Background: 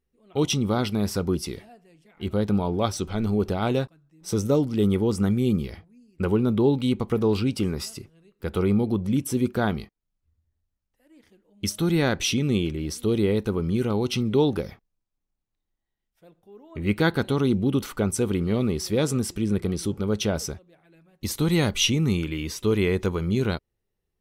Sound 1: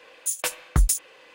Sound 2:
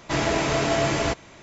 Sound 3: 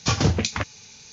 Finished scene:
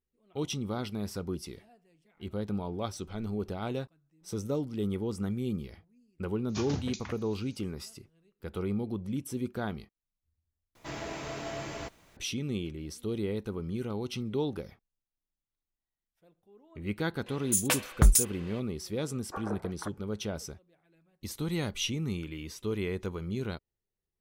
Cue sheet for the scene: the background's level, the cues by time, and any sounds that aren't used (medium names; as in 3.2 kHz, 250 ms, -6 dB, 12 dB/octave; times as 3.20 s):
background -10.5 dB
6.49 s: add 3 -16 dB
10.75 s: replace with 2 -15.5 dB + added noise pink -49 dBFS
17.26 s: add 1 -0.5 dB
19.26 s: add 3 -10 dB + elliptic band-pass 360–1500 Hz